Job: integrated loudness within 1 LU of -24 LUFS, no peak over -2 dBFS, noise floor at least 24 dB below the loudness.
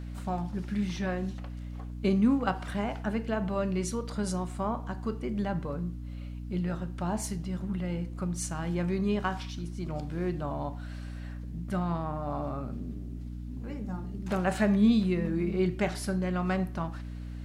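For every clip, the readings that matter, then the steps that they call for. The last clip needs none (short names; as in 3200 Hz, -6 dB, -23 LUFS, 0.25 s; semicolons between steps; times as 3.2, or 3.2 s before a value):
hum 60 Hz; harmonics up to 300 Hz; hum level -36 dBFS; loudness -32.0 LUFS; peak -13.5 dBFS; loudness target -24.0 LUFS
-> notches 60/120/180/240/300 Hz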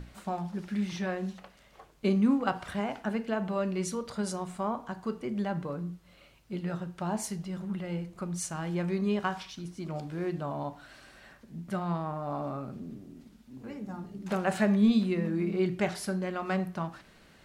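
hum none; loudness -32.0 LUFS; peak -14.0 dBFS; loudness target -24.0 LUFS
-> gain +8 dB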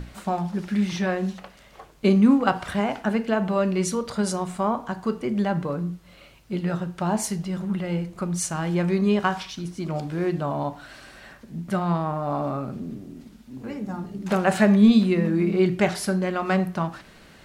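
loudness -24.0 LUFS; peak -6.0 dBFS; noise floor -50 dBFS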